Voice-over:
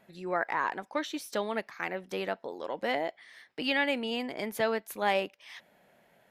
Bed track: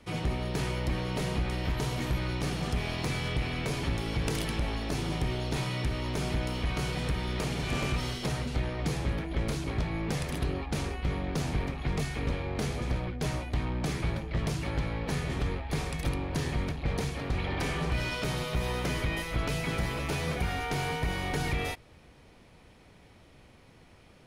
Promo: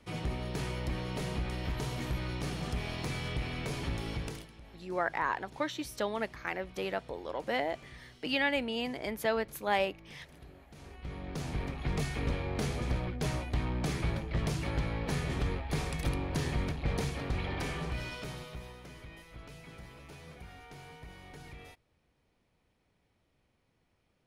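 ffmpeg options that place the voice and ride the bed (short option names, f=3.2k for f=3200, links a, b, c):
-filter_complex "[0:a]adelay=4650,volume=-1.5dB[a];[1:a]volume=16dB,afade=t=out:st=4.1:d=0.38:silence=0.133352,afade=t=in:st=10.75:d=1.28:silence=0.0944061,afade=t=out:st=17.07:d=1.7:silence=0.141254[b];[a][b]amix=inputs=2:normalize=0"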